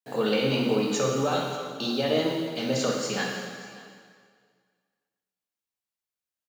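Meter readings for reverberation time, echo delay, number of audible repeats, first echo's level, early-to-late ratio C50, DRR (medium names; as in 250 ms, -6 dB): 2.0 s, 585 ms, 1, -20.0 dB, 1.5 dB, -1.0 dB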